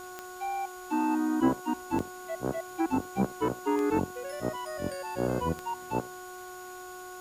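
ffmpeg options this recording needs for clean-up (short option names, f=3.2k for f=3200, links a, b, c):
-af "adeclick=t=4,bandreject=f=365.8:t=h:w=4,bandreject=f=731.6:t=h:w=4,bandreject=f=1.0974k:t=h:w=4,bandreject=f=1.4632k:t=h:w=4,bandreject=f=6.8k:w=30,afwtdn=0.0025"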